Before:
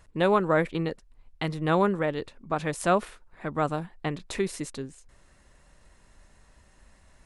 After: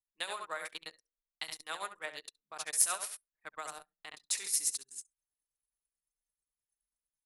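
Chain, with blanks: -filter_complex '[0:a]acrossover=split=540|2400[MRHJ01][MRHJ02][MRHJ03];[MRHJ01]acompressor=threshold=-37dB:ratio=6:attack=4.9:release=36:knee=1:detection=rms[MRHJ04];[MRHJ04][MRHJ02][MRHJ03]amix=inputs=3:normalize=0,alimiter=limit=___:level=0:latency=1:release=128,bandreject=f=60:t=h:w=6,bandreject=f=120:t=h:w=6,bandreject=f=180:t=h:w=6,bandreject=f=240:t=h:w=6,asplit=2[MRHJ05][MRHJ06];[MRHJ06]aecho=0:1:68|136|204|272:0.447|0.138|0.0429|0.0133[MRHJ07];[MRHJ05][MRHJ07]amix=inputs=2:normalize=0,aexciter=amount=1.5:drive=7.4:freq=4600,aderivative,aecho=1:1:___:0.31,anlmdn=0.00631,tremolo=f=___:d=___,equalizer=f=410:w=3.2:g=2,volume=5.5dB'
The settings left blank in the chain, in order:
-14.5dB, 6.5, 9.2, 0.63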